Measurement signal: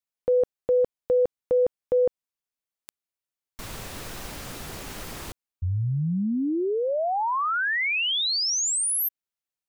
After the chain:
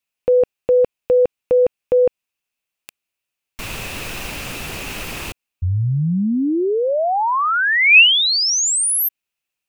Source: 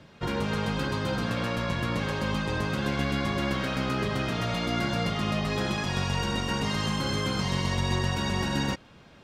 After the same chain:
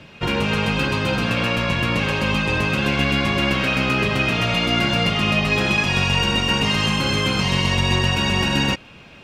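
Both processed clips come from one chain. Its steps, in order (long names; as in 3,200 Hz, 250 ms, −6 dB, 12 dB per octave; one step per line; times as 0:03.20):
parametric band 2,600 Hz +12 dB 0.38 octaves
level +7 dB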